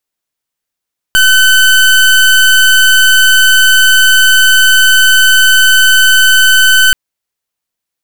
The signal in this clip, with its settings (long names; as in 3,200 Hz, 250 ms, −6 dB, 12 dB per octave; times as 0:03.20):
pulse wave 1,520 Hz, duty 29% −6 dBFS 5.78 s